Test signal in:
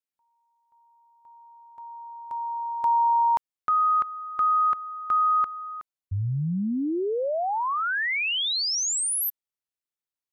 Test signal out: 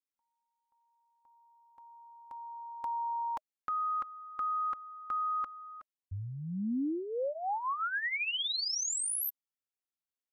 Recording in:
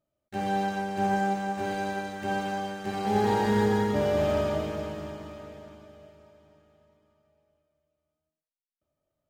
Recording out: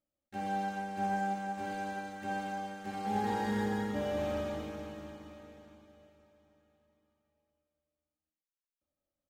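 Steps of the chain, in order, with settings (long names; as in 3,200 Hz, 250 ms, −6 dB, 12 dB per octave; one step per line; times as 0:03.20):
notch filter 620 Hz, Q 12
comb filter 3.7 ms, depth 49%
level −8.5 dB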